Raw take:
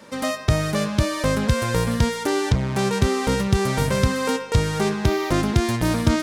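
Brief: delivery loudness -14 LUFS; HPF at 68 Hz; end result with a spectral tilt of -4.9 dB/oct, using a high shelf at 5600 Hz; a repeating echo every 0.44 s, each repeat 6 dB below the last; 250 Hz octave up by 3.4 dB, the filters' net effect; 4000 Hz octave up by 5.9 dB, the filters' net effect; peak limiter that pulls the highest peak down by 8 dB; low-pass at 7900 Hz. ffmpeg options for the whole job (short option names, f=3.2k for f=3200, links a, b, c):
-af "highpass=68,lowpass=7.9k,equalizer=f=250:t=o:g=4.5,equalizer=f=4k:t=o:g=5.5,highshelf=f=5.6k:g=5,alimiter=limit=-10.5dB:level=0:latency=1,aecho=1:1:440|880|1320|1760|2200|2640:0.501|0.251|0.125|0.0626|0.0313|0.0157,volume=6dB"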